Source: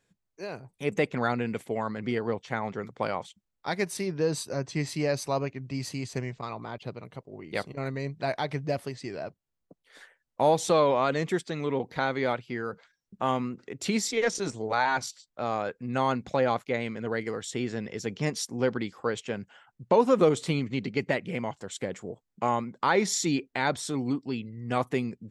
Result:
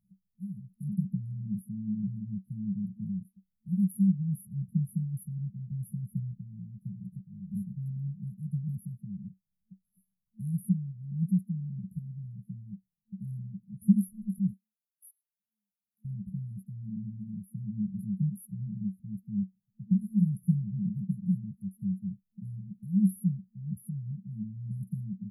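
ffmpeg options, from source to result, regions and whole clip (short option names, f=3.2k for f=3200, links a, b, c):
-filter_complex "[0:a]asettb=1/sr,asplit=3[a][b][c];[a]atrim=end=14.534[d];[b]atrim=start=14.53:end=16.05,asetpts=PTS-STARTPTS,afade=t=in:d=0.004:c=qsin,afade=t=out:st=1.516:d=0.004:c=qsin,highpass=f=1k:w=0.5412,highpass=f=1k:w=1.3066,aecho=1:1:3.3:0.5,atrim=end_sample=67032[e];[c]atrim=start=16.046[f];[d][e]acrossfade=d=0.004:c1=hsin:c2=qsin[g];[g][f]acrossfade=d=0.004:c1=qsin:c2=hsin,afftfilt=real='re*(1-between(b*sr/4096,220,9900))':imag='im*(1-between(b*sr/4096,220,9900))':win_size=4096:overlap=0.75,equalizer=f=190:w=4.8:g=14"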